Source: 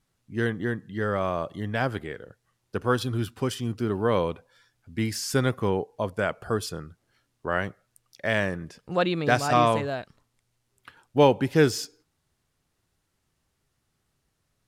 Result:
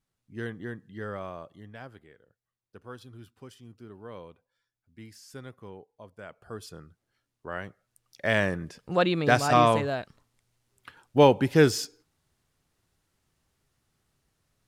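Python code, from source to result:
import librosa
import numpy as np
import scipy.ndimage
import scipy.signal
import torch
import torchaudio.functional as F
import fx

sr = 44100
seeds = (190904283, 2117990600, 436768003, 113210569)

y = fx.gain(x, sr, db=fx.line((1.09, -9.0), (1.97, -19.5), (6.12, -19.5), (6.8, -9.0), (7.67, -9.0), (8.3, 0.5)))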